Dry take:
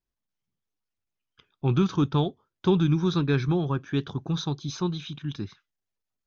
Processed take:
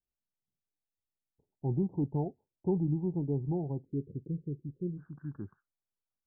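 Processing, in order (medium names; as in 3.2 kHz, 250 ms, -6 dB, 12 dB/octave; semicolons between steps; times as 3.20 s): steep low-pass 880 Hz 96 dB/octave, from 3.84 s 520 Hz, from 4.97 s 1.6 kHz; trim -8 dB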